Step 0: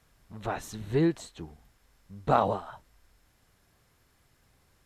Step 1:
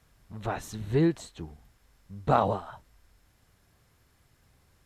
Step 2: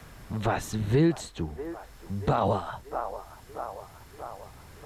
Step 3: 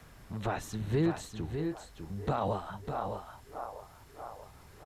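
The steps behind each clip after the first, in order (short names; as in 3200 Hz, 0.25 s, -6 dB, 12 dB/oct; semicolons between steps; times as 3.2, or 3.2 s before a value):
bell 86 Hz +4 dB 2 oct
band-limited delay 0.635 s, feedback 51%, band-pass 840 Hz, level -16.5 dB; limiter -19.5 dBFS, peak gain reduction 11 dB; three-band squash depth 40%; gain +7 dB
echo 0.601 s -7 dB; gain -6.5 dB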